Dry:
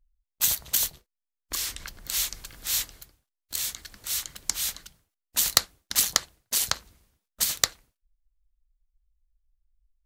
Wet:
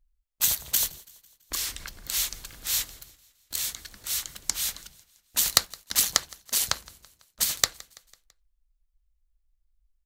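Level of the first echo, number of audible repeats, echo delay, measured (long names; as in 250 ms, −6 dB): −23.0 dB, 3, 166 ms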